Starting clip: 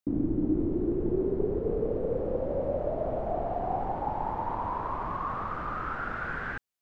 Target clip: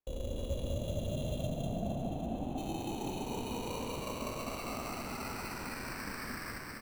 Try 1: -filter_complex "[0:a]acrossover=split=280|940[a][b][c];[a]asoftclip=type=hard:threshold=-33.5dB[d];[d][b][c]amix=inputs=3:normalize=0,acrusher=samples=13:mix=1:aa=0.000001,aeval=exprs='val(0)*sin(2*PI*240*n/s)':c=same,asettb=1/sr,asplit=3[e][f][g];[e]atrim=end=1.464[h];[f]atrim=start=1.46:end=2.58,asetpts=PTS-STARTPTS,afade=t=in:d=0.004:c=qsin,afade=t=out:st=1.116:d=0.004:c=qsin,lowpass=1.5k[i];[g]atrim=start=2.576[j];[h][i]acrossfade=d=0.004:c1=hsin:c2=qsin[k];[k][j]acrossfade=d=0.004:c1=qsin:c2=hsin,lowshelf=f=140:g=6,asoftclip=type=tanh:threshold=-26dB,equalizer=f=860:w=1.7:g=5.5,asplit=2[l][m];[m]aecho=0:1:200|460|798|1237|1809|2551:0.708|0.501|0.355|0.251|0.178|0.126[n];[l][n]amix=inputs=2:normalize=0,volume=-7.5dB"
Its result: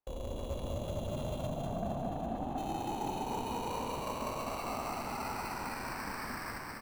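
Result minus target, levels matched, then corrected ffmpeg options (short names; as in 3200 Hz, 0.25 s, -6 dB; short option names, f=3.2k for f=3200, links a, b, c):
soft clip: distortion +17 dB; 1000 Hz band +5.0 dB
-filter_complex "[0:a]acrossover=split=280|940[a][b][c];[a]asoftclip=type=hard:threshold=-33.5dB[d];[d][b][c]amix=inputs=3:normalize=0,acrusher=samples=13:mix=1:aa=0.000001,aeval=exprs='val(0)*sin(2*PI*240*n/s)':c=same,asettb=1/sr,asplit=3[e][f][g];[e]atrim=end=1.464[h];[f]atrim=start=1.46:end=2.58,asetpts=PTS-STARTPTS,afade=t=in:d=0.004:c=qsin,afade=t=out:st=1.116:d=0.004:c=qsin,lowpass=1.5k[i];[g]atrim=start=2.576[j];[h][i]acrossfade=d=0.004:c1=hsin:c2=qsin[k];[k][j]acrossfade=d=0.004:c1=qsin:c2=hsin,lowshelf=f=140:g=6,asoftclip=type=tanh:threshold=-15dB,equalizer=f=860:w=1.7:g=-3.5,asplit=2[l][m];[m]aecho=0:1:200|460|798|1237|1809|2551:0.708|0.501|0.355|0.251|0.178|0.126[n];[l][n]amix=inputs=2:normalize=0,volume=-7.5dB"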